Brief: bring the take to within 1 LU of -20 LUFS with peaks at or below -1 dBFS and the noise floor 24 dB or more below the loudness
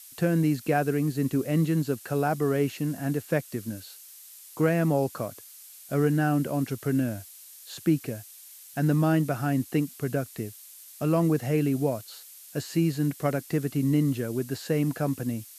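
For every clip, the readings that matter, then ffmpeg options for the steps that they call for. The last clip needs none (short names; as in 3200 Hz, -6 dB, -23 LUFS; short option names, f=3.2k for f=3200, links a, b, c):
noise floor -48 dBFS; noise floor target -51 dBFS; loudness -27.0 LUFS; peak -10.5 dBFS; loudness target -20.0 LUFS
-> -af "afftdn=nr=6:nf=-48"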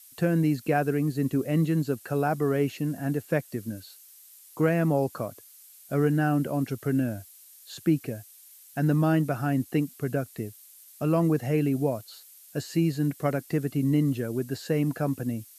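noise floor -52 dBFS; loudness -27.0 LUFS; peak -10.5 dBFS; loudness target -20.0 LUFS
-> -af "volume=7dB"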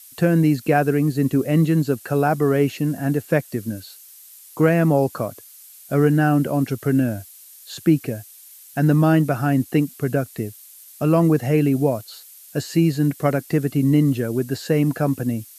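loudness -20.0 LUFS; peak -3.5 dBFS; noise floor -45 dBFS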